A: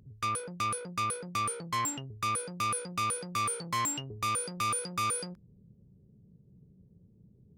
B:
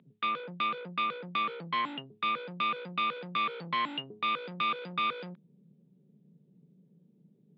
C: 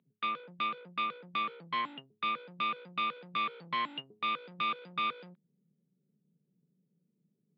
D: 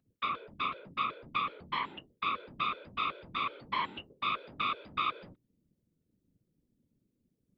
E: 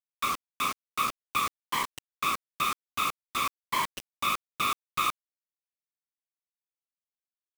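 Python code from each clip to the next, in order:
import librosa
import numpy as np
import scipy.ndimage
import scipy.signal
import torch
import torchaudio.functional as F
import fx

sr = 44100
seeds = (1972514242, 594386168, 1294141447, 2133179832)

y1 = scipy.signal.sosfilt(scipy.signal.cheby1(5, 1.0, [150.0, 3700.0], 'bandpass', fs=sr, output='sos'), x)
y1 = fx.high_shelf(y1, sr, hz=2800.0, db=9.5)
y2 = fx.upward_expand(y1, sr, threshold_db=-52.0, expansion=1.5)
y2 = F.gain(torch.from_numpy(y2), -2.0).numpy()
y3 = fx.whisperise(y2, sr, seeds[0])
y4 = fx.dmg_buzz(y3, sr, base_hz=400.0, harmonics=3, level_db=-62.0, tilt_db=-8, odd_only=False)
y4 = fx.quant_dither(y4, sr, seeds[1], bits=6, dither='none')
y4 = F.gain(torch.from_numpy(y4), 4.0).numpy()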